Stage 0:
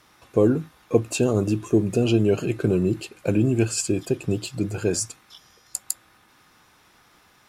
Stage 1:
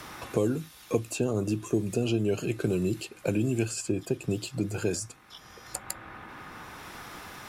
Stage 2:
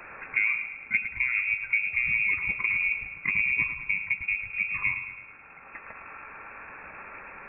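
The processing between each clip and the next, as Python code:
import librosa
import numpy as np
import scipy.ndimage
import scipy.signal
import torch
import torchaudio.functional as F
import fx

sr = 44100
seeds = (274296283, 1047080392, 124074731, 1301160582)

y1 = fx.high_shelf(x, sr, hz=6800.0, db=4.0)
y1 = fx.band_squash(y1, sr, depth_pct=70)
y1 = F.gain(torch.from_numpy(y1), -6.5).numpy()
y2 = fx.echo_feedback(y1, sr, ms=108, feedback_pct=57, wet_db=-10.0)
y2 = fx.freq_invert(y2, sr, carrier_hz=2600)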